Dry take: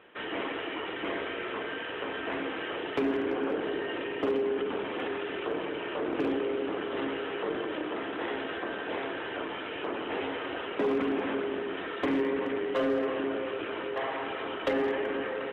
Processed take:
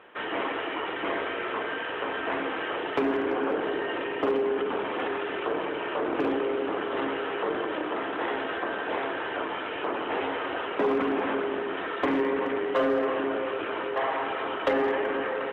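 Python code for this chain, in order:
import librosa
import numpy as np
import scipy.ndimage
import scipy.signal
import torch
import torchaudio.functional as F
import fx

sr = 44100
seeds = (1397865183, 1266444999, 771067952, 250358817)

y = fx.peak_eq(x, sr, hz=980.0, db=7.0, octaves=2.0)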